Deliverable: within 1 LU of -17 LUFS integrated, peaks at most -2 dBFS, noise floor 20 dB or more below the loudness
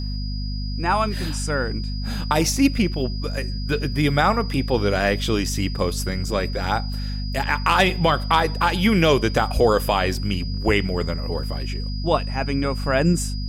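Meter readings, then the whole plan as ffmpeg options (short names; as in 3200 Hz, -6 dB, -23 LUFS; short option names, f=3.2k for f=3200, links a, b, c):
hum 50 Hz; harmonics up to 250 Hz; hum level -24 dBFS; steady tone 4900 Hz; tone level -36 dBFS; loudness -22.0 LUFS; peak -5.0 dBFS; loudness target -17.0 LUFS
-> -af "bandreject=f=50:t=h:w=4,bandreject=f=100:t=h:w=4,bandreject=f=150:t=h:w=4,bandreject=f=200:t=h:w=4,bandreject=f=250:t=h:w=4"
-af "bandreject=f=4.9k:w=30"
-af "volume=5dB,alimiter=limit=-2dB:level=0:latency=1"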